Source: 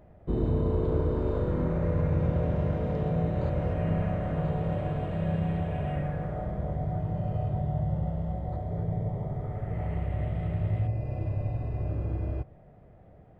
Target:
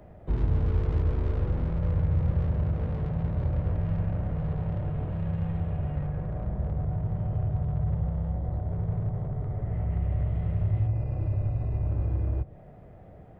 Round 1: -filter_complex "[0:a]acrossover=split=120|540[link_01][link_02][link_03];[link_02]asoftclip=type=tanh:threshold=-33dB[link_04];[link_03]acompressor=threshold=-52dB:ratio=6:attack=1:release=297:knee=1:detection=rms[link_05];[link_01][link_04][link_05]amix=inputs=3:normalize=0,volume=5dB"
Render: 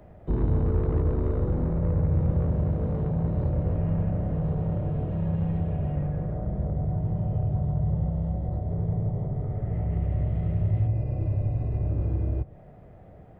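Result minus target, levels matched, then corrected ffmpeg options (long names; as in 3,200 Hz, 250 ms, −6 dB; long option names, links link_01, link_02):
soft clipping: distortion −6 dB
-filter_complex "[0:a]acrossover=split=120|540[link_01][link_02][link_03];[link_02]asoftclip=type=tanh:threshold=-43dB[link_04];[link_03]acompressor=threshold=-52dB:ratio=6:attack=1:release=297:knee=1:detection=rms[link_05];[link_01][link_04][link_05]amix=inputs=3:normalize=0,volume=5dB"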